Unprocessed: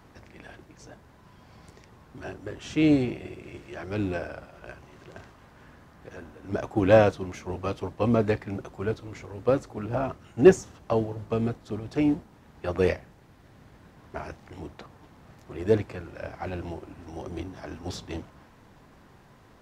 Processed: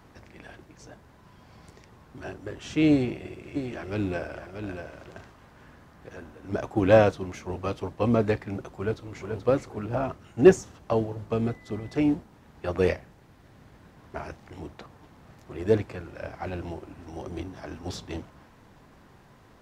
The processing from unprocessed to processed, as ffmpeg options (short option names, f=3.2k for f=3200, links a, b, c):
-filter_complex "[0:a]asplit=3[a][b][c];[a]afade=t=out:st=3.55:d=0.02[d];[b]aecho=1:1:634:0.422,afade=t=in:st=3.55:d=0.02,afade=t=out:st=5.16:d=0.02[e];[c]afade=t=in:st=5.16:d=0.02[f];[d][e][f]amix=inputs=3:normalize=0,asplit=2[g][h];[h]afade=t=in:st=8.74:d=0.01,afade=t=out:st=9.36:d=0.01,aecho=0:1:430|860:0.501187|0.0501187[i];[g][i]amix=inputs=2:normalize=0,asettb=1/sr,asplit=3[j][k][l];[j]atrim=end=11.474[m];[k]atrim=start=11.47:end=12.03,asetpts=PTS-STARTPTS,afade=t=in:d=0.004:c=qsin,afade=t=out:st=0.556:d=0.004:c=qsin,aeval=exprs='val(0)+0.00224*sin(2*PI*2000*n/s)':c=same[n];[l]atrim=start=12.026[o];[m][n]acrossfade=d=0.004:c1=hsin:c2=qsin[p];[p][o]acrossfade=d=0.004:c1=qsin:c2=hsin"